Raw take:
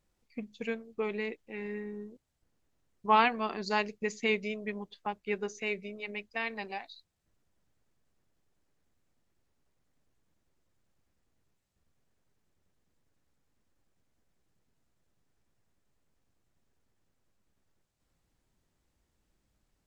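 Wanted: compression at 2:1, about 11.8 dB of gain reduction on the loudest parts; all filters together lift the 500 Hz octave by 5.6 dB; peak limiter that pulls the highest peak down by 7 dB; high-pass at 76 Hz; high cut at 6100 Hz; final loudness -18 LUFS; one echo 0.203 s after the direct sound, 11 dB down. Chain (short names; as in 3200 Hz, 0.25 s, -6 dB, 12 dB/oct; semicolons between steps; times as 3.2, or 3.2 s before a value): HPF 76 Hz; LPF 6100 Hz; bell 500 Hz +7 dB; compressor 2:1, threshold -38 dBFS; limiter -27 dBFS; echo 0.203 s -11 dB; gain +22 dB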